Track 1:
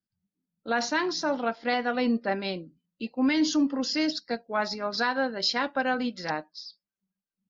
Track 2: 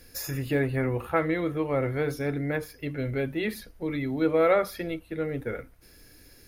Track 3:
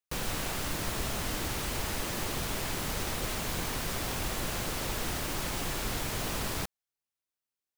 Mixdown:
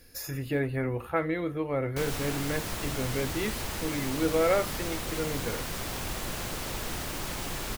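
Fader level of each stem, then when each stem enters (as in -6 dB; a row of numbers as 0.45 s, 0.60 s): mute, -3.0 dB, -1.0 dB; mute, 0.00 s, 1.85 s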